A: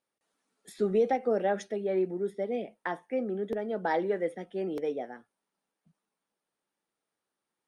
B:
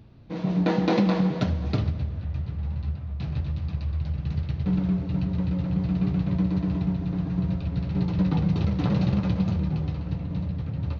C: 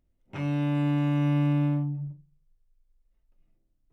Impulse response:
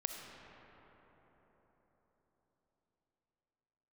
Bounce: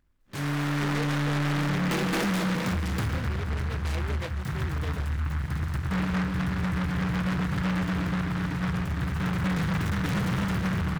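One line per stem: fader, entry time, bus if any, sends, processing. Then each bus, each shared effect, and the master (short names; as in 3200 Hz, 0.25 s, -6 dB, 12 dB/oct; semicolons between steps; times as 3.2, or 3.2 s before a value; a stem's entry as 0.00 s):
-3.5 dB, 0.00 s, no send, bell 990 Hz -6.5 dB 1.3 oct
-2.0 dB, 1.25 s, send -5 dB, dry
+2.5 dB, 0.00 s, no send, dry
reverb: on, RT60 4.6 s, pre-delay 20 ms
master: soft clip -23.5 dBFS, distortion -10 dB; noise-modulated delay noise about 1300 Hz, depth 0.29 ms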